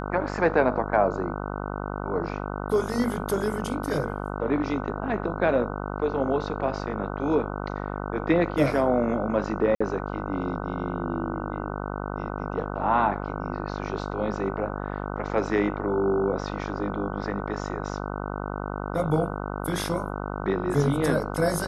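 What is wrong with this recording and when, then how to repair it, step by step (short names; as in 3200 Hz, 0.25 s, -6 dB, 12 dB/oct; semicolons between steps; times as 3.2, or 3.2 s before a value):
buzz 50 Hz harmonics 30 -32 dBFS
9.75–9.8 gap 55 ms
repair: de-hum 50 Hz, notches 30; interpolate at 9.75, 55 ms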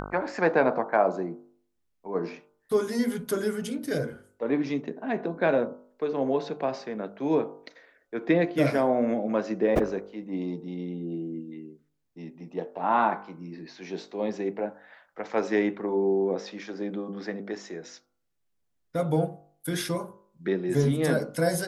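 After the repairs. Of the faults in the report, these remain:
none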